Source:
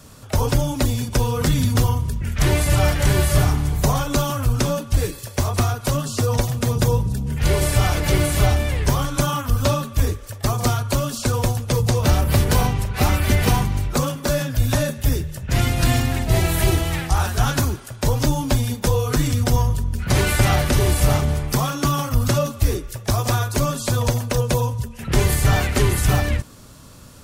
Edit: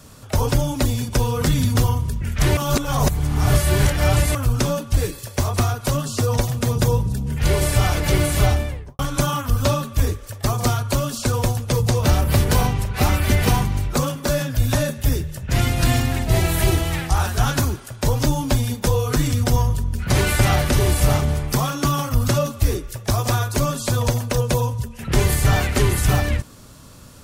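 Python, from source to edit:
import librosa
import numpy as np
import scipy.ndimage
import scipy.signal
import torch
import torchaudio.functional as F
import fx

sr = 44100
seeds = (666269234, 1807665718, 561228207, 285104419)

y = fx.studio_fade_out(x, sr, start_s=8.47, length_s=0.52)
y = fx.edit(y, sr, fx.reverse_span(start_s=2.57, length_s=1.78), tone=tone)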